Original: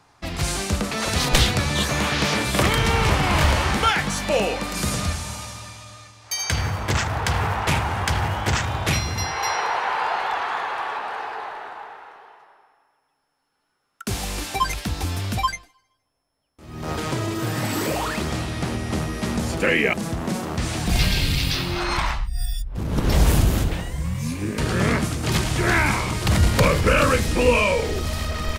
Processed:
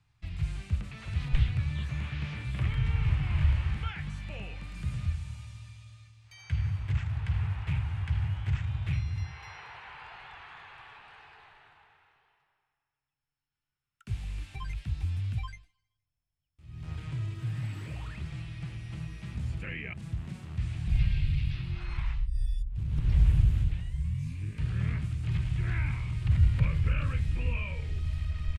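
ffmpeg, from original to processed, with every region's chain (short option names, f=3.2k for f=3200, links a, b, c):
-filter_complex "[0:a]asettb=1/sr,asplit=3[a][b][c];[a]atrim=end=18.254[d];[b]atrim=start=18.25:end=19.35,asetpts=PTS-STARTPTS,afade=t=in:d=0.004:c=qsin,afade=t=out:st=1.096:d=0.004:c=qsin,lowshelf=f=380:g=-4.5,aecho=1:1:6:0.59,atrim=end_sample=48510[e];[c]atrim=start=19.346[f];[d][e]acrossfade=d=0.004:c1=hsin:c2=qsin[g];[g][f]acrossfade=d=0.004:c1=qsin:c2=hsin,firequalizer=gain_entry='entry(130,0);entry(210,-17);entry(500,-25);entry(2500,-9);entry(5800,-18);entry(8200,-15);entry(15000,-28)':delay=0.05:min_phase=1,acrossover=split=2600[h][i];[i]acompressor=threshold=-53dB:ratio=4:attack=1:release=60[j];[h][j]amix=inputs=2:normalize=0,volume=-4dB"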